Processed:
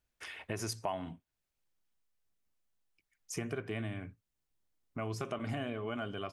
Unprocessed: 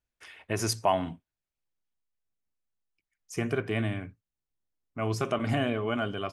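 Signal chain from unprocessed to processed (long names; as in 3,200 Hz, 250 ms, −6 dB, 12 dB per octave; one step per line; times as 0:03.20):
downward compressor 2.5 to 1, threshold −45 dBFS, peak gain reduction 16.5 dB
level +4 dB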